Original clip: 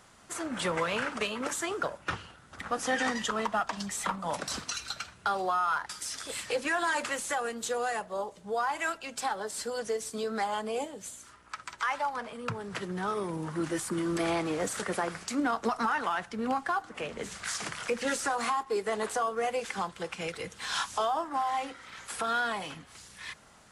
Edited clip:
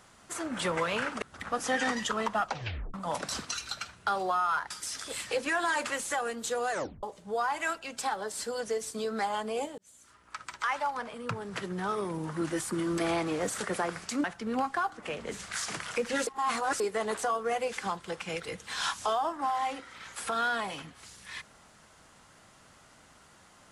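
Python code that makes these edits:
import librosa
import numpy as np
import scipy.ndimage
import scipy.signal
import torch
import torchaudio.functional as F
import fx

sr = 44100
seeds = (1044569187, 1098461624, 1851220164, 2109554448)

y = fx.edit(x, sr, fx.cut(start_s=1.22, length_s=1.19),
    fx.tape_stop(start_s=3.63, length_s=0.5),
    fx.tape_stop(start_s=7.9, length_s=0.32),
    fx.fade_in_span(start_s=10.97, length_s=0.63),
    fx.cut(start_s=15.43, length_s=0.73),
    fx.reverse_span(start_s=18.19, length_s=0.53), tone=tone)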